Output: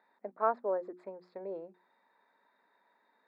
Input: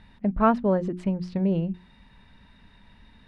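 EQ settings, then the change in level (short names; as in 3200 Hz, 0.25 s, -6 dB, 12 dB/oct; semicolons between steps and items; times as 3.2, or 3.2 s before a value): running mean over 15 samples; HPF 420 Hz 24 dB/oct; -6.0 dB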